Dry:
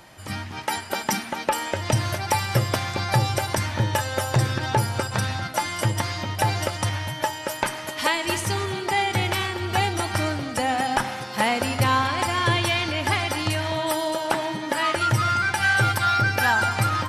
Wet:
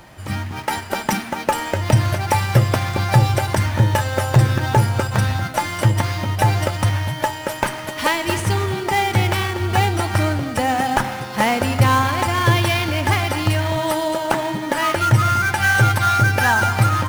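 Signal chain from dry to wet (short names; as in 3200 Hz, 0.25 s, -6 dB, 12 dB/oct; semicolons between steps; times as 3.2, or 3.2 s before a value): in parallel at -4 dB: sample-rate reducer 7800 Hz, jitter 20%; on the sum: low shelf 140 Hz +6.5 dB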